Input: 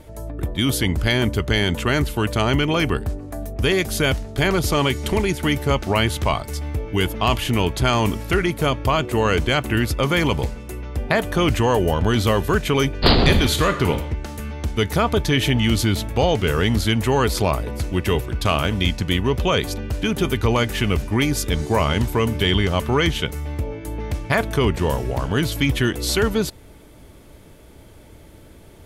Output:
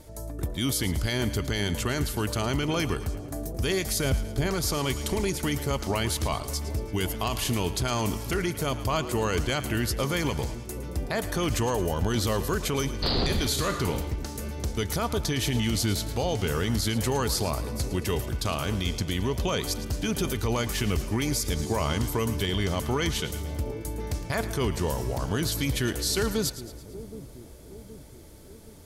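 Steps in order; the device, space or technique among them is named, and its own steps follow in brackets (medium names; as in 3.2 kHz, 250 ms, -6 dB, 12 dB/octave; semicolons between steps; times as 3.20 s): over-bright horn tweeter (resonant high shelf 3.8 kHz +6.5 dB, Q 1.5; peak limiter -12 dBFS, peak gain reduction 10.5 dB); 4.04–4.47 s: tilt shelf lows +5 dB, about 650 Hz; two-band feedback delay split 660 Hz, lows 771 ms, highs 111 ms, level -13.5 dB; trim -5.5 dB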